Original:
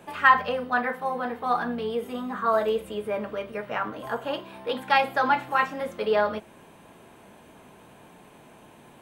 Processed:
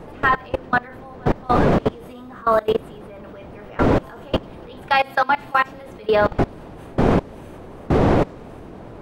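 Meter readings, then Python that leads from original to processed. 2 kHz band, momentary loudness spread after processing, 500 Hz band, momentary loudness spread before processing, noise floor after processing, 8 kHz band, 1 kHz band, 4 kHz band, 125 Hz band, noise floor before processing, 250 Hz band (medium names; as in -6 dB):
+2.5 dB, 21 LU, +6.5 dB, 11 LU, -39 dBFS, no reading, +3.5 dB, +3.0 dB, +21.5 dB, -52 dBFS, +11.5 dB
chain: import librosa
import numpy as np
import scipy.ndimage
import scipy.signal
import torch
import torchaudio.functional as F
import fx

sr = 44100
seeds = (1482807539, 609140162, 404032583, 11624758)

y = fx.dmg_wind(x, sr, seeds[0], corner_hz=480.0, level_db=-24.0)
y = fx.level_steps(y, sr, step_db=23)
y = fx.echo_wet_highpass(y, sr, ms=96, feedback_pct=81, hz=4400.0, wet_db=-21.5)
y = y * 10.0 ** (8.0 / 20.0)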